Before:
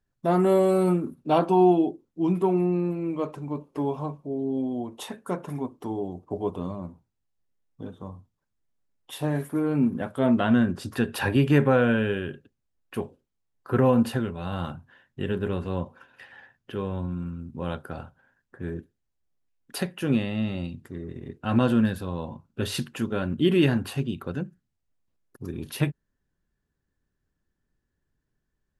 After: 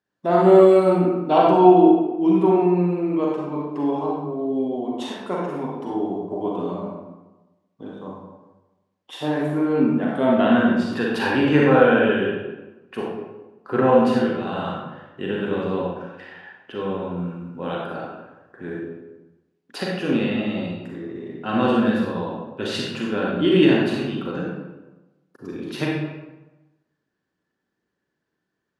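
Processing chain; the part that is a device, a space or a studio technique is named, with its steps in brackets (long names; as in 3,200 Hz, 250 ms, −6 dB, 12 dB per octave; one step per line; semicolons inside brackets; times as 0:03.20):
supermarket ceiling speaker (band-pass filter 230–5,400 Hz; convolution reverb RT60 1.1 s, pre-delay 35 ms, DRR −3.5 dB)
level +2 dB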